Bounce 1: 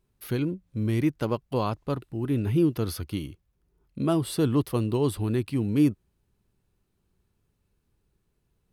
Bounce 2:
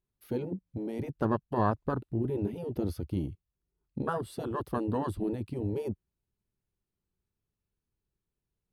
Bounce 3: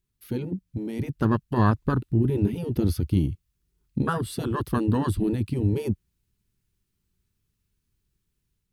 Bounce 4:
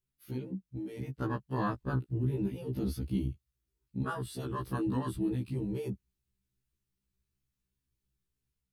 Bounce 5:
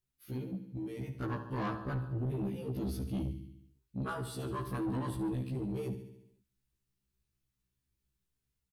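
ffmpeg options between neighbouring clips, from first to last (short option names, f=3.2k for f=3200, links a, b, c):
-af "afftfilt=real='re*lt(hypot(re,im),0.316)':imag='im*lt(hypot(re,im),0.316)':win_size=1024:overlap=0.75,afwtdn=0.0158,volume=2dB"
-af "equalizer=f=640:w=0.83:g=-12.5,dynaudnorm=f=850:g=3:m=4dB,volume=8dB"
-af "afftfilt=real='re*1.73*eq(mod(b,3),0)':imag='im*1.73*eq(mod(b,3),0)':win_size=2048:overlap=0.75,volume=-6.5dB"
-filter_complex "[0:a]asplit=2[a][b];[b]aecho=0:1:71|142|213|284|355|426|497:0.282|0.163|0.0948|0.055|0.0319|0.0185|0.0107[c];[a][c]amix=inputs=2:normalize=0,asoftclip=type=tanh:threshold=-30dB"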